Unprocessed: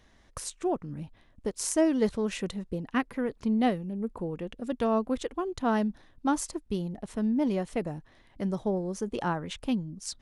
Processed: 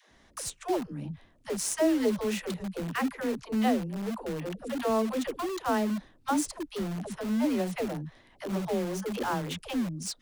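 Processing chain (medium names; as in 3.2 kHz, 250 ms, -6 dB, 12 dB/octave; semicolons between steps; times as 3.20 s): bass shelf 97 Hz -7.5 dB; phase dispersion lows, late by 111 ms, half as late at 330 Hz; in parallel at -8 dB: integer overflow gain 31.5 dB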